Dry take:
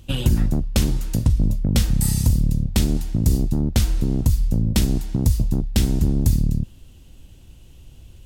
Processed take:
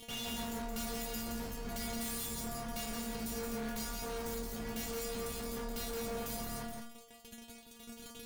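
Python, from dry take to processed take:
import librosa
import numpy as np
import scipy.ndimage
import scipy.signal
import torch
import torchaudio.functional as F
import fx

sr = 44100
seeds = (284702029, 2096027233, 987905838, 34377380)

p1 = fx.lower_of_two(x, sr, delay_ms=1.4)
p2 = fx.highpass(p1, sr, hz=110.0, slope=6)
p3 = fx.tube_stage(p2, sr, drive_db=19.0, bias=0.4)
p4 = fx.fuzz(p3, sr, gain_db=54.0, gate_db=-46.0)
p5 = p3 + F.gain(torch.from_numpy(p4), -4.5).numpy()
p6 = fx.stiff_resonator(p5, sr, f0_hz=230.0, decay_s=0.55, stiffness=0.002)
p7 = np.clip(p6, -10.0 ** (-38.5 / 20.0), 10.0 ** (-38.5 / 20.0))
y = p7 + fx.echo_single(p7, sr, ms=171, db=-4.5, dry=0)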